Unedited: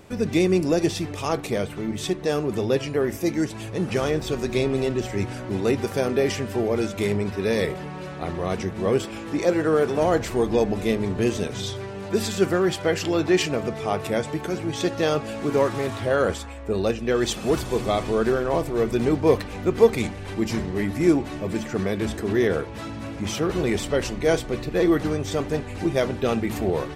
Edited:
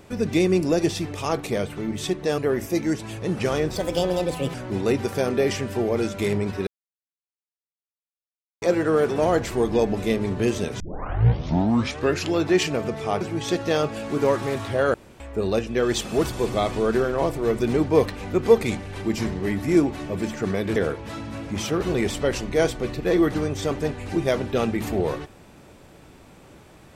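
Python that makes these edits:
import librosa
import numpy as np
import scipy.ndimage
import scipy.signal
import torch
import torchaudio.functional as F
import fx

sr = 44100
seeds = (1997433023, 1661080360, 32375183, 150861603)

y = fx.edit(x, sr, fx.cut(start_s=2.38, length_s=0.51),
    fx.speed_span(start_s=4.27, length_s=1.06, speed=1.36),
    fx.silence(start_s=7.46, length_s=1.95),
    fx.tape_start(start_s=11.59, length_s=1.52),
    fx.cut(start_s=14.0, length_s=0.53),
    fx.room_tone_fill(start_s=16.26, length_s=0.26),
    fx.cut(start_s=22.08, length_s=0.37), tone=tone)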